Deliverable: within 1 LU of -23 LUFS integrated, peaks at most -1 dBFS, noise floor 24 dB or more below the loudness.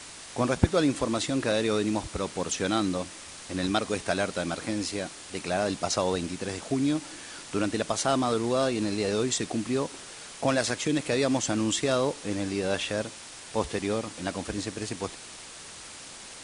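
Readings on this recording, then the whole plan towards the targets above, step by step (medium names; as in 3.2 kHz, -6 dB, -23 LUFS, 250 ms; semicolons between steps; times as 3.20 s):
noise floor -44 dBFS; noise floor target -53 dBFS; loudness -28.5 LUFS; peak level -7.0 dBFS; loudness target -23.0 LUFS
-> noise print and reduce 9 dB; trim +5.5 dB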